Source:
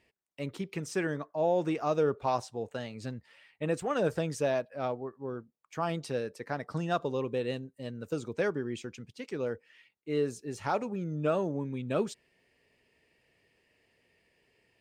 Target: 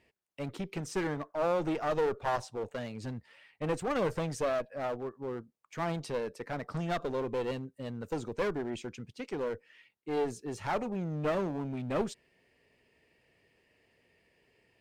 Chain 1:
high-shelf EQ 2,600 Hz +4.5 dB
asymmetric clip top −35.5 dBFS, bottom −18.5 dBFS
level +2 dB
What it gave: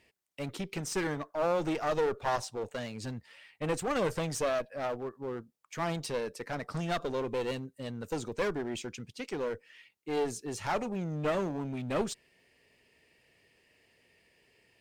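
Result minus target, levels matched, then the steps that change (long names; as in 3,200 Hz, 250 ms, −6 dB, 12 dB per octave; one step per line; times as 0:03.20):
4,000 Hz band +4.0 dB
change: high-shelf EQ 2,600 Hz −4 dB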